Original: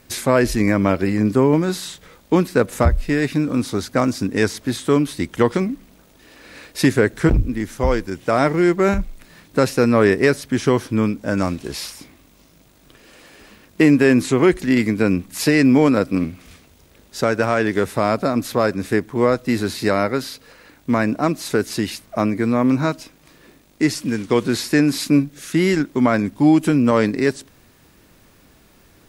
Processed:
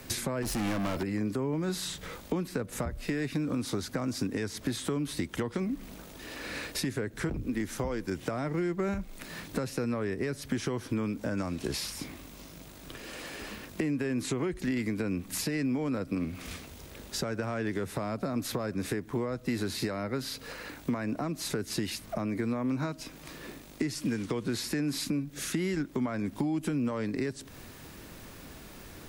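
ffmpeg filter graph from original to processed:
-filter_complex "[0:a]asettb=1/sr,asplit=3[a][b][c];[a]atrim=end=0.424[d];[b]atrim=start=0.42:end=1.03,asetpts=PTS-STARTPTS,afade=t=in:d=0.004:c=qsin,afade=t=out:st=0.606:d=0.004:c=qsin,highshelf=f=8.7k:g=8.5,acontrast=64,asoftclip=type=hard:threshold=-18.5dB[e];[c]atrim=start=1.026[f];[d][e]acrossfade=d=0.004:c1=hsin:c2=qsin[g];[g][f]acrossfade=d=0.004:c1=qsin:c2=hsin,acompressor=threshold=-23dB:ratio=1.5,alimiter=limit=-16dB:level=0:latency=1:release=308,acrossover=split=120|260[h][i][j];[h]acompressor=threshold=-47dB:ratio=4[k];[i]acompressor=threshold=-42dB:ratio=4[l];[j]acompressor=threshold=-39dB:ratio=4[m];[k][l][m]amix=inputs=3:normalize=0,volume=4.5dB"

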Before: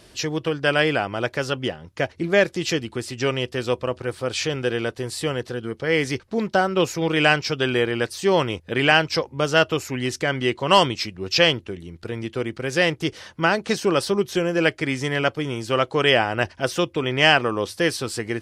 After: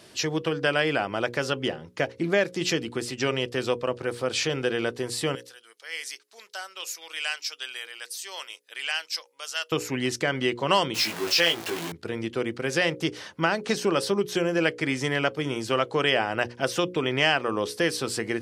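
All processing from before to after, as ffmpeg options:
-filter_complex "[0:a]asettb=1/sr,asplit=3[a][b][c];[a]atrim=end=5.354[d];[b]atrim=start=5.35:end=9.72,asetpts=PTS-STARTPTS,afade=t=in:d=0.004:c=qsin,afade=t=out:st=4.366:d=0.004:c=qsin,highpass=510,aderivative[e];[c]atrim=start=9.716[f];[d][e]acrossfade=d=0.004:c1=hsin:c2=qsin[g];[g][f]acrossfade=d=0.004:c1=qsin:c2=hsin,asettb=1/sr,asplit=3[h][i][j];[h]atrim=end=10.944[k];[i]atrim=start=10.94:end=11.92,asetpts=PTS-STARTPTS,afade=t=in:d=0.004:c=qsin,afade=t=out:st=0.976:d=0.004:c=qsin,aeval=exprs='val(0)+0.5*0.0596*sgn(val(0))':c=same,highpass=f=580:p=1,asplit=2[l][m];[m]adelay=18,volume=-3dB[n];[l][n]amix=inputs=2:normalize=0,atrim=end_sample=43218[o];[j]atrim=start=11.916[p];[k][o]acrossfade=d=0.004:c1=hsin:c2=qsin[q];[q][p]acrossfade=d=0.004:c1=qsin:c2=hsin,highpass=130,bandreject=f=60:t=h:w=6,bandreject=f=120:t=h:w=6,bandreject=f=180:t=h:w=6,bandreject=f=240:t=h:w=6,bandreject=f=300:t=h:w=6,bandreject=f=360:t=h:w=6,bandreject=f=420:t=h:w=6,bandreject=f=480:t=h:w=6,bandreject=f=540:t=h:w=6,acompressor=threshold=-22dB:ratio=2"

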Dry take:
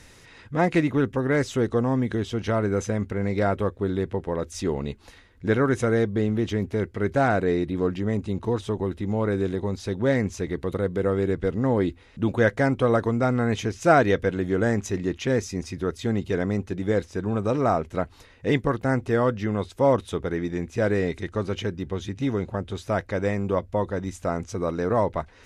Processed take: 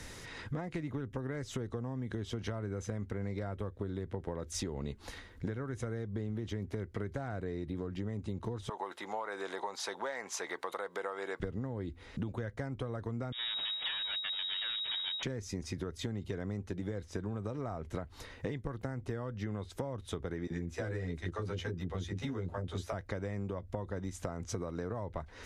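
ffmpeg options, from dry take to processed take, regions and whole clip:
-filter_complex "[0:a]asettb=1/sr,asplit=3[a][b][c];[a]atrim=end=8.694[d];[b]atrim=start=8.69:end=11.4,asetpts=PTS-STARTPTS,afade=t=in:d=0.004:c=qsin,afade=t=out:st=2.706:d=0.004:c=qsin,acompressor=threshold=-29dB:ratio=1.5:attack=3.2:release=140:knee=1:detection=peak,highpass=f=860:t=q:w=2[e];[c]atrim=start=11.396[f];[d][e]acrossfade=d=0.004:c1=hsin:c2=qsin[g];[g][f]acrossfade=d=0.004:c1=qsin:c2=hsin,asettb=1/sr,asplit=3[h][i][j];[h]atrim=end=13.324[k];[i]atrim=start=13.32:end=15.23,asetpts=PTS-STARTPTS,afade=t=in:d=0.004:c=qsin,afade=t=out:st=1.906:d=0.004:c=qsin,tiltshelf=f=1.1k:g=-4.5,aeval=exprs='abs(val(0))':c=same,lowpass=f=3.2k:t=q:w=0.5098,lowpass=f=3.2k:t=q:w=0.6013,lowpass=f=3.2k:t=q:w=0.9,lowpass=f=3.2k:t=q:w=2.563,afreqshift=-3800[l];[j]atrim=start=15.226[m];[k][l]acrossfade=d=0.004:c1=hsin:c2=qsin[n];[n][m]acrossfade=d=0.004:c1=qsin:c2=hsin,asettb=1/sr,asplit=3[o][p][q];[o]atrim=end=20.474[r];[p]atrim=start=20.47:end=22.93,asetpts=PTS-STARTPTS,afade=t=in:d=0.004:c=qsin,afade=t=out:st=2.456:d=0.004:c=qsin,asplit=2[s][t];[t]adelay=12,volume=-3dB[u];[s][u]amix=inputs=2:normalize=0,atrim=end_sample=108486,acrossover=split=480[v][w];[v]adelay=30[x];[x][w]amix=inputs=2:normalize=0,atrim=end_sample=108486[y];[q]atrim=start=22.926[z];[r][y]acrossfade=d=0.004:c1=hsin:c2=qsin[aa];[aa][z]acrossfade=d=0.004:c1=qsin:c2=hsin,acrossover=split=120[ab][ac];[ac]acompressor=threshold=-29dB:ratio=6[ad];[ab][ad]amix=inputs=2:normalize=0,equalizer=f=2.6k:w=6.7:g=-4.5,acompressor=threshold=-37dB:ratio=10,volume=3dB"

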